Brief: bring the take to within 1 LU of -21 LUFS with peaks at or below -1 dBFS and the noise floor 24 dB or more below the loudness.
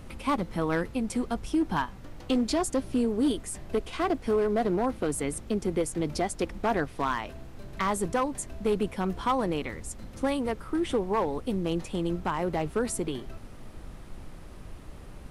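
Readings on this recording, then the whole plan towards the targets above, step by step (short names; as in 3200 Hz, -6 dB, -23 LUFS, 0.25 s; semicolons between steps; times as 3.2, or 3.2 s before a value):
clipped 1.2%; flat tops at -19.5 dBFS; noise floor -45 dBFS; noise floor target -54 dBFS; loudness -29.5 LUFS; peak -19.5 dBFS; loudness target -21.0 LUFS
-> clip repair -19.5 dBFS; noise print and reduce 9 dB; gain +8.5 dB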